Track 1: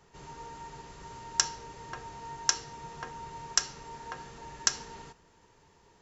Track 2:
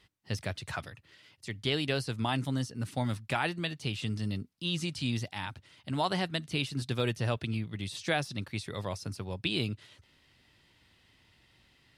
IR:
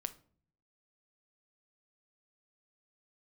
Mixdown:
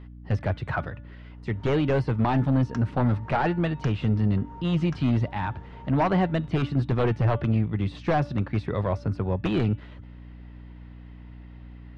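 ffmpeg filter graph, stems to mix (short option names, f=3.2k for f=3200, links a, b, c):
-filter_complex "[0:a]adelay=1350,volume=-0.5dB[a];[1:a]aeval=exprs='0.178*sin(PI/2*3.16*val(0)/0.178)':c=same,bandreject=f=289.9:t=h:w=4,bandreject=f=579.8:t=h:w=4,bandreject=f=869.7:t=h:w=4,bandreject=f=1.1596k:t=h:w=4,bandreject=f=1.4495k:t=h:w=4,bandreject=f=1.7394k:t=h:w=4,bandreject=f=2.0293k:t=h:w=4,bandreject=f=2.3192k:t=h:w=4,bandreject=f=2.6091k:t=h:w=4,bandreject=f=2.899k:t=h:w=4,bandreject=f=3.1889k:t=h:w=4,bandreject=f=3.4788k:t=h:w=4,bandreject=f=3.7687k:t=h:w=4,volume=-1.5dB,asplit=2[b][c];[c]apad=whole_len=324638[d];[a][d]sidechaincompress=threshold=-31dB:ratio=8:attack=9.5:release=147[e];[e][b]amix=inputs=2:normalize=0,lowpass=1.4k,aeval=exprs='val(0)+0.00794*(sin(2*PI*60*n/s)+sin(2*PI*2*60*n/s)/2+sin(2*PI*3*60*n/s)/3+sin(2*PI*4*60*n/s)/4+sin(2*PI*5*60*n/s)/5)':c=same"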